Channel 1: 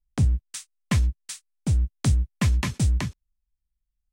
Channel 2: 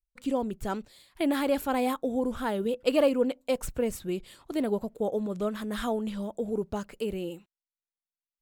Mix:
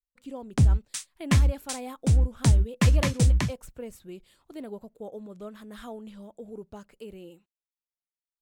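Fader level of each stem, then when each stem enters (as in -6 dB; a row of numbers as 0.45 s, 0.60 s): +1.5 dB, -10.5 dB; 0.40 s, 0.00 s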